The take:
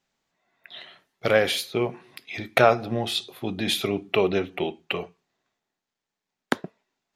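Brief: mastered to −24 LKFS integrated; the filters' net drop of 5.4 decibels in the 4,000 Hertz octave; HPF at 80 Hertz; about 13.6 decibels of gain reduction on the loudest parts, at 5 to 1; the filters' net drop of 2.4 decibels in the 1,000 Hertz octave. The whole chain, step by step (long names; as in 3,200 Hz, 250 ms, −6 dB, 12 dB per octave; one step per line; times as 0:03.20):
high-pass filter 80 Hz
parametric band 1,000 Hz −3.5 dB
parametric band 4,000 Hz −6.5 dB
downward compressor 5 to 1, threshold −29 dBFS
level +11 dB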